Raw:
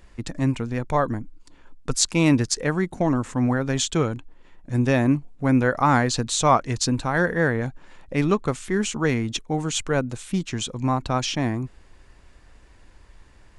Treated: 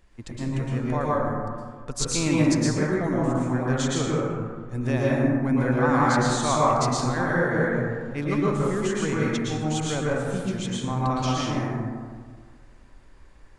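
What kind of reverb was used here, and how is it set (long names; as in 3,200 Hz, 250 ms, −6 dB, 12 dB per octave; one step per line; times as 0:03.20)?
dense smooth reverb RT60 1.8 s, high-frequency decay 0.35×, pre-delay 100 ms, DRR −6 dB
level −8.5 dB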